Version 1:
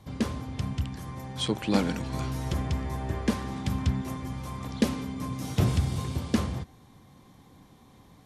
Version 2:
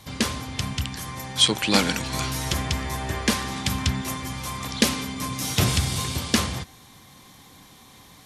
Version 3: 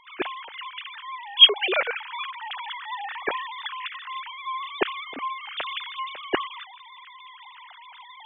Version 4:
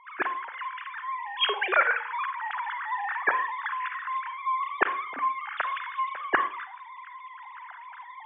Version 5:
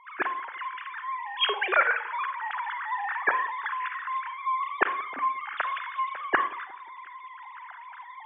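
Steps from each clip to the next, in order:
tilt shelving filter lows −7.5 dB, about 1,200 Hz; level +8.5 dB
three sine waves on the formant tracks; reversed playback; upward compression, threshold −34 dBFS; reversed playback; level −2 dB
drawn EQ curve 410 Hz 0 dB, 1,600 Hz +15 dB, 3,300 Hz −9 dB; convolution reverb RT60 0.40 s, pre-delay 35 ms, DRR 10 dB; level −6.5 dB
bucket-brigade delay 179 ms, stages 2,048, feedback 50%, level −23 dB

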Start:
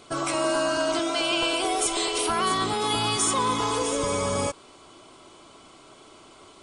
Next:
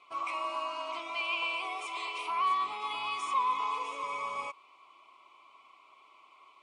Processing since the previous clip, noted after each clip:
pair of resonant band-passes 1,600 Hz, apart 1.1 octaves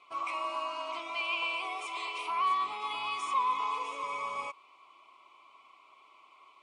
no processing that can be heard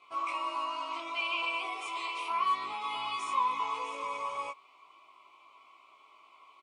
double-tracking delay 18 ms −2 dB
level −2 dB

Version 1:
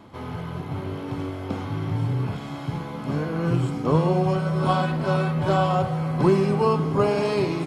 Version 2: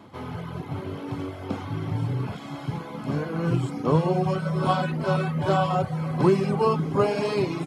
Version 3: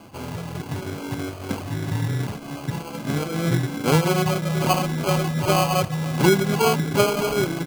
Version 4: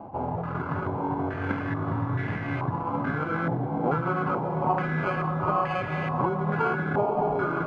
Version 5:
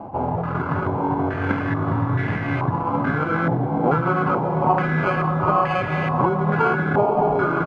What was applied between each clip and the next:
high-pass filter 77 Hz; reverb reduction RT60 0.62 s
decimation without filtering 24×; level +2.5 dB
downward compressor, threshold −27 dBFS, peak gain reduction 15 dB; feedback delay with all-pass diffusion 460 ms, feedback 48%, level −5 dB; low-pass on a step sequencer 2.3 Hz 810–1,900 Hz
downsampling to 32,000 Hz; level +6.5 dB

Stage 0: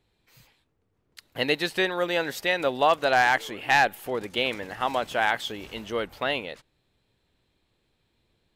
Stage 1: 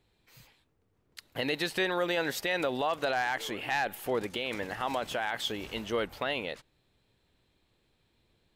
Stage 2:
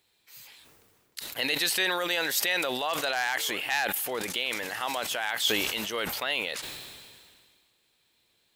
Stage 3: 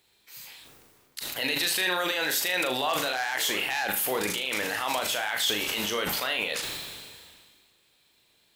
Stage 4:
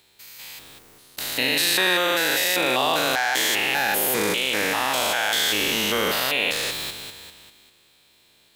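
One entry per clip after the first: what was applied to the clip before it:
brickwall limiter −20 dBFS, peak gain reduction 10.5 dB
spectral tilt +3.5 dB per octave; level that may fall only so fast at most 30 dB per second
brickwall limiter −21 dBFS, peak gain reduction 8.5 dB; on a send: flutter between parallel walls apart 6.6 metres, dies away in 0.36 s; on the sum: level +3.5 dB
spectrum averaged block by block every 200 ms; level +8.5 dB

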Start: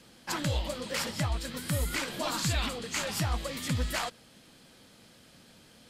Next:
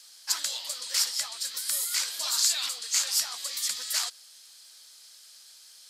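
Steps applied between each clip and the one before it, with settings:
high-pass filter 1,400 Hz 12 dB per octave
high shelf with overshoot 3,600 Hz +9.5 dB, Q 1.5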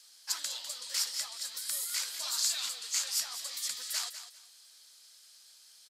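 repeating echo 200 ms, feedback 21%, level −11.5 dB
level −6 dB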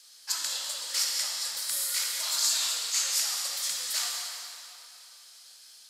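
convolution reverb RT60 2.9 s, pre-delay 19 ms, DRR −1 dB
level +2.5 dB

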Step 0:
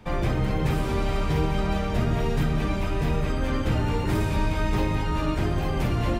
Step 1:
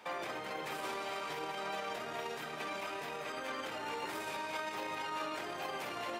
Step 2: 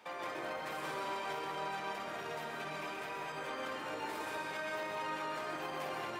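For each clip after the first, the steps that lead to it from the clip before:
brickwall limiter −24.5 dBFS, peak gain reduction 11.5 dB; high-pass filter 610 Hz 12 dB per octave; level +1 dB
convolution reverb RT60 1.0 s, pre-delay 118 ms, DRR −1.5 dB; level −4 dB

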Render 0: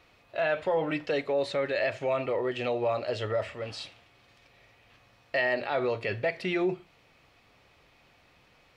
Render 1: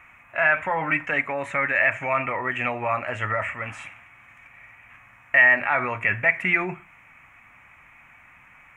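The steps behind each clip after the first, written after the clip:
drawn EQ curve 250 Hz 0 dB, 430 Hz −13 dB, 970 Hz +7 dB, 2,300 Hz +12 dB, 4,500 Hz −29 dB, 6,700 Hz 0 dB
level +4 dB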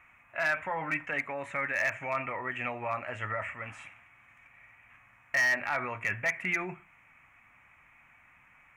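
gain into a clipping stage and back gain 13.5 dB
level −8.5 dB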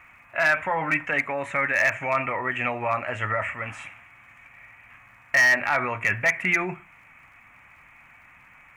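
surface crackle 100 per second −64 dBFS
level +8 dB

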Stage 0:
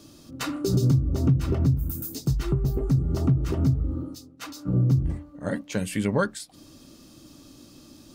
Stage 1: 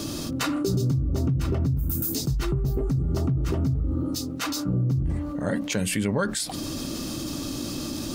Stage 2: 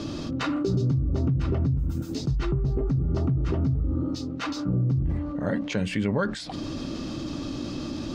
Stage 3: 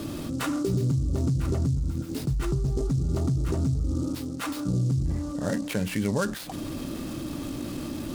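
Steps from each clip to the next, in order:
envelope flattener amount 70%; level −5.5 dB
high-frequency loss of the air 160 metres
short delay modulated by noise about 5,900 Hz, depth 0.04 ms; level −1 dB

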